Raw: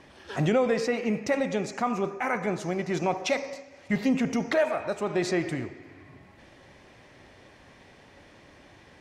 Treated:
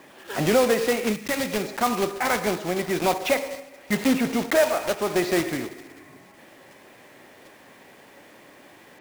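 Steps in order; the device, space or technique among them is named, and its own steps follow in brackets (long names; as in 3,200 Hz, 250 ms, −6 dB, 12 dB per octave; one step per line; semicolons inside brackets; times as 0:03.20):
early digital voice recorder (band-pass filter 210–3,500 Hz; one scale factor per block 3 bits)
0:01.12–0:01.62: parametric band 590 Hz −12.5 dB → −2.5 dB 1.8 octaves
level +4.5 dB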